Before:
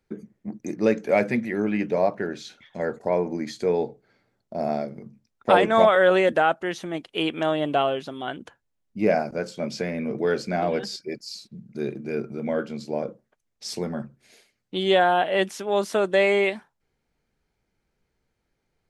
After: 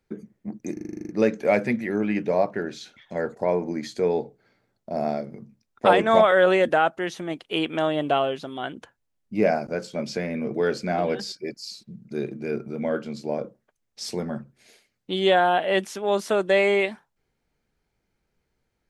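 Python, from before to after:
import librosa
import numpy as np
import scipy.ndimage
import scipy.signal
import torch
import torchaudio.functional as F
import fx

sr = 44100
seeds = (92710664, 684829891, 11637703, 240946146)

y = fx.edit(x, sr, fx.stutter(start_s=0.73, slice_s=0.04, count=10), tone=tone)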